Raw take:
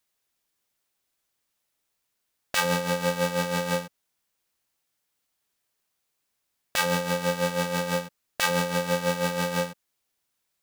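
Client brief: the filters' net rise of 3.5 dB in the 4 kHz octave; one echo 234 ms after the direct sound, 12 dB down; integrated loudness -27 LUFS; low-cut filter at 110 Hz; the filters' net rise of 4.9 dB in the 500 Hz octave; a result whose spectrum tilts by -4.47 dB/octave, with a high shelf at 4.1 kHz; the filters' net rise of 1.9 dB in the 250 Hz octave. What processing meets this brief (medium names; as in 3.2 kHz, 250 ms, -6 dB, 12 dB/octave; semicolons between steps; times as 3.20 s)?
high-pass 110 Hz; peaking EQ 250 Hz +3.5 dB; peaking EQ 500 Hz +4.5 dB; peaking EQ 4 kHz +8.5 dB; treble shelf 4.1 kHz -7.5 dB; delay 234 ms -12 dB; trim -3 dB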